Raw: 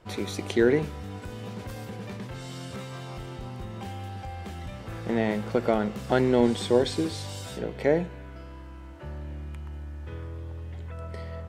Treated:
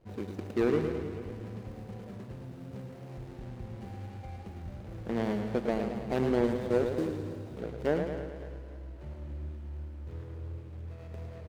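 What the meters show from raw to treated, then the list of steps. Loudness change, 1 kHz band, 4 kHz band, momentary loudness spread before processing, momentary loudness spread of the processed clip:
-5.5 dB, -7.0 dB, -13.5 dB, 16 LU, 15 LU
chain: median filter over 41 samples; feedback echo 0.276 s, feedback 46%, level -15 dB; warbling echo 0.108 s, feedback 62%, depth 88 cents, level -7 dB; gain -5 dB

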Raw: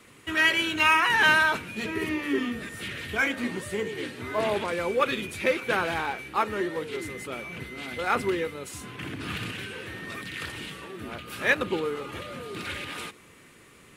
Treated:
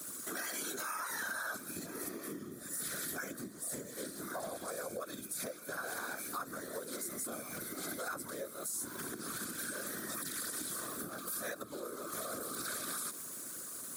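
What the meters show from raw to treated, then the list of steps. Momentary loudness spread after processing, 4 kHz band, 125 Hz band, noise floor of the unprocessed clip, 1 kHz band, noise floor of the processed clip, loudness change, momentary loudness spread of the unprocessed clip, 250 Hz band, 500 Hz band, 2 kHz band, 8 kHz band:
5 LU, -15.0 dB, -14.0 dB, -53 dBFS, -15.0 dB, -49 dBFS, -12.5 dB, 16 LU, -12.5 dB, -14.0 dB, -17.5 dB, +5.0 dB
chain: bell 2000 Hz -14.5 dB 0.76 oct; fixed phaser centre 570 Hz, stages 8; small resonant body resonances 240/1500 Hz, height 8 dB; crackle 330/s -54 dBFS; whisperiser; compressor 16:1, threshold -41 dBFS, peak gain reduction 22.5 dB; RIAA curve recording; limiter -35 dBFS, peak gain reduction 11.5 dB; gain +5.5 dB

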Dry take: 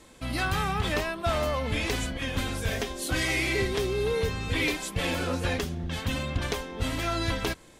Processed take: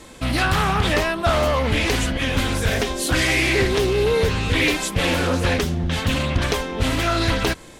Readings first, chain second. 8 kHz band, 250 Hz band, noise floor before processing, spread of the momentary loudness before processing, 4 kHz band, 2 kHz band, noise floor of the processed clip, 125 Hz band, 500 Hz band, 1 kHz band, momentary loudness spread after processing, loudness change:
+8.0 dB, +9.0 dB, -52 dBFS, 5 LU, +8.5 dB, +8.5 dB, -42 dBFS, +8.5 dB, +8.5 dB, +8.5 dB, 4 LU, +8.5 dB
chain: in parallel at -1 dB: limiter -24.5 dBFS, peak gain reduction 8 dB; on the sum: Doppler distortion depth 0.35 ms; gain +5 dB

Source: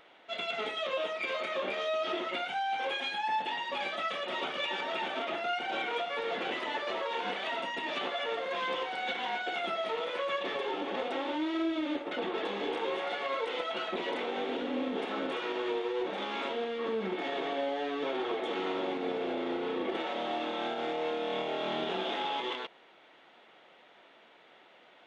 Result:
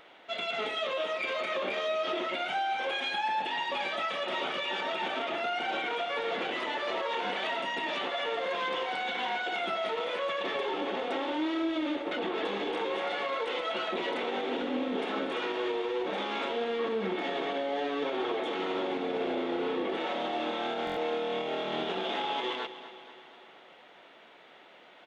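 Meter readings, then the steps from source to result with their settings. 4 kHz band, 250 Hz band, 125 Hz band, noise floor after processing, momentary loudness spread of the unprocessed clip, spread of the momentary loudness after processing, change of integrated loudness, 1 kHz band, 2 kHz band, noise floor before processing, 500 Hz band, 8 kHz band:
+2.0 dB, +1.5 dB, +2.0 dB, -55 dBFS, 2 LU, 2 LU, +1.5 dB, +1.5 dB, +2.0 dB, -59 dBFS, +1.5 dB, n/a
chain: limiter -27.5 dBFS, peak gain reduction 6.5 dB; feedback echo 0.238 s, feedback 58%, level -14 dB; stuck buffer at 20.85, samples 1024, times 4; gain +3.5 dB

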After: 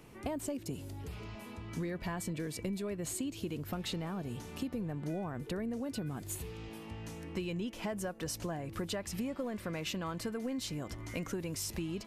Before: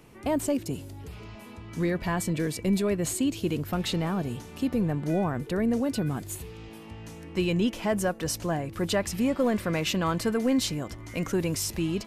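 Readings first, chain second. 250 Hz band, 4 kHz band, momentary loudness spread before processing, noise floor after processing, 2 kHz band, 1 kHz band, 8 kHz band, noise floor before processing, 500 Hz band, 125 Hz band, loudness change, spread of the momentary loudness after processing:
-11.0 dB, -9.0 dB, 15 LU, -49 dBFS, -10.0 dB, -10.5 dB, -8.0 dB, -45 dBFS, -11.0 dB, -9.5 dB, -11.0 dB, 7 LU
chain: compressor 10:1, threshold -32 dBFS, peak gain reduction 12 dB; gain -2 dB

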